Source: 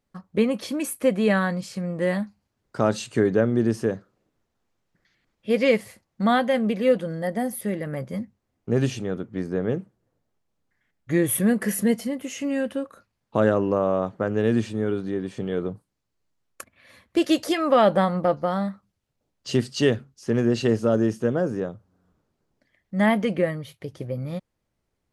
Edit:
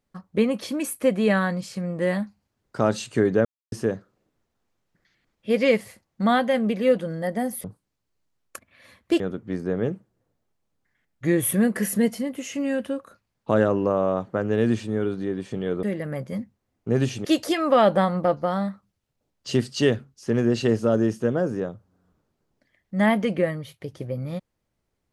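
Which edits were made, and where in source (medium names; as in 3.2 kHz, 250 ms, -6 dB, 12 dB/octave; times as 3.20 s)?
3.45–3.72 s: mute
7.64–9.06 s: swap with 15.69–17.25 s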